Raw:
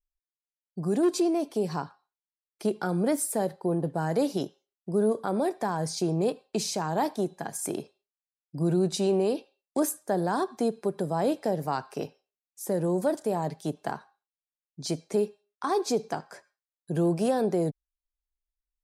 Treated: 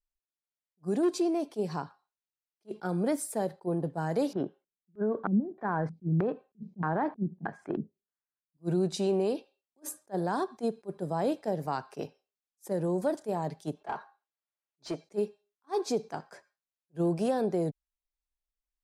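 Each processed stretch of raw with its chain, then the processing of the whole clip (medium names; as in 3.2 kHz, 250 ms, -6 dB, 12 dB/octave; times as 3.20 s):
4.33–8.57 s: dynamic bell 270 Hz, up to +5 dB, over -40 dBFS, Q 0.73 + compression, threshold -22 dBFS + LFO low-pass square 1.6 Hz 200–1600 Hz
13.80–15.04 s: comb of notches 250 Hz + overdrive pedal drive 18 dB, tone 1.1 kHz, clips at -17 dBFS + bass shelf 220 Hz -8 dB
whole clip: treble shelf 8.4 kHz -7.5 dB; attacks held to a fixed rise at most 520 dB/s; trim -3 dB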